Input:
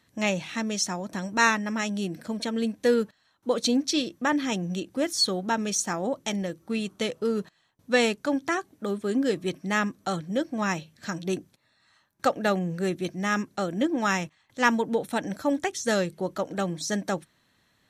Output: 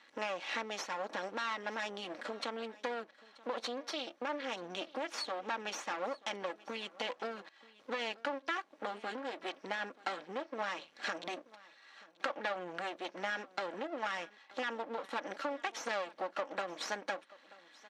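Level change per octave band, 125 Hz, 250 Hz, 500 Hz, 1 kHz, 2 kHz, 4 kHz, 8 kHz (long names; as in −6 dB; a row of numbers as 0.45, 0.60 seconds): −26.0, −20.0, −12.0, −8.5, −9.5, −10.5, −18.0 decibels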